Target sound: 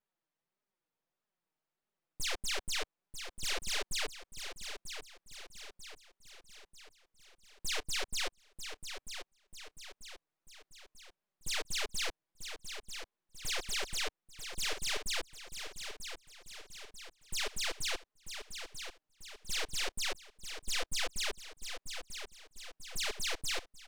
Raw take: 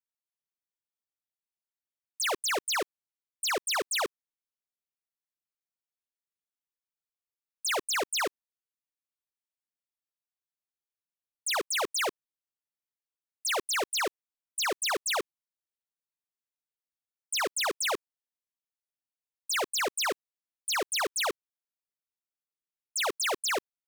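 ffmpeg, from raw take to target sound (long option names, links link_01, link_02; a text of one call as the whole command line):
ffmpeg -i in.wav -filter_complex "[0:a]aeval=exprs='if(lt(val(0),0),0.251*val(0),val(0))':channel_layout=same,lowpass=frequency=1000:poles=1,lowshelf=frequency=67:gain=-10,asplit=2[link_01][link_02];[link_02]acompressor=threshold=-44dB:ratio=6,volume=-2dB[link_03];[link_01][link_03]amix=inputs=2:normalize=0,aeval=exprs='0.0376*sin(PI/2*3.16*val(0)/0.0376)':channel_layout=same,flanger=delay=4.7:depth=2:regen=0:speed=1.6:shape=triangular,aecho=1:1:941|1882|2823|3764|4705|5646:0.376|0.188|0.094|0.047|0.0235|0.0117" out.wav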